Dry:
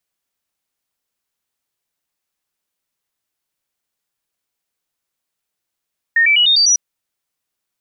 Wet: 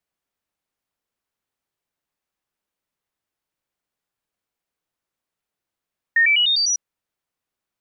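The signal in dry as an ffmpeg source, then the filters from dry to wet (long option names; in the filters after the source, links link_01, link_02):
-f lavfi -i "aevalsrc='0.355*clip(min(mod(t,0.1),0.1-mod(t,0.1))/0.005,0,1)*sin(2*PI*1840*pow(2,floor(t/0.1)/3)*mod(t,0.1))':duration=0.6:sample_rate=44100"
-af "highshelf=frequency=2800:gain=-9.5"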